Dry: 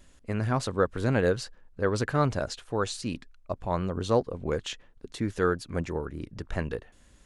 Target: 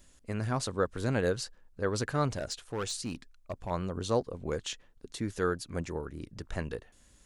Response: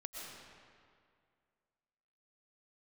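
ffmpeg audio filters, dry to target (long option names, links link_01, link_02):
-filter_complex "[0:a]acrossover=split=4400[link_01][link_02];[link_02]acontrast=75[link_03];[link_01][link_03]amix=inputs=2:normalize=0,asettb=1/sr,asplit=3[link_04][link_05][link_06];[link_04]atrim=end=2.284[link_07];[link_05]atrim=start=2.28:end=3.71,asetpts=PTS-STARTPTS,afade=type=in:duration=0.004:curve=qsin,afade=type=out:start_time=1.426:duration=0.004:curve=qsin,asoftclip=type=hard:threshold=-24.5dB[link_08];[link_06]atrim=start=3.706[link_09];[link_07][link_08]acrossfade=duration=0.004:curve1=hsin:curve2=qsin[link_10];[link_10][link_09]acrossfade=duration=0.004:curve1=qsin:curve2=hsin,volume=-4.5dB"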